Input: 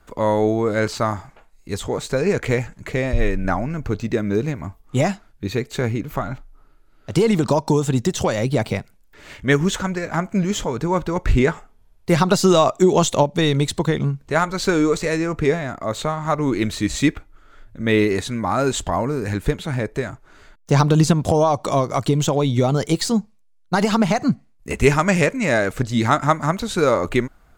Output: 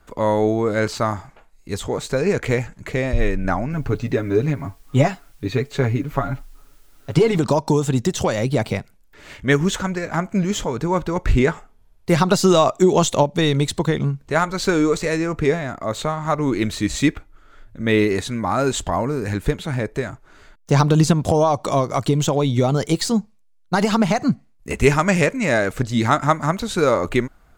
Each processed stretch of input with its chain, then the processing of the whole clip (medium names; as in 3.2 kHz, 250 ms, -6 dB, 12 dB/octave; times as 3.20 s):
3.72–7.38 s: treble shelf 6.9 kHz -11.5 dB + comb 7.2 ms, depth 71% + word length cut 10-bit, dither triangular
whole clip: none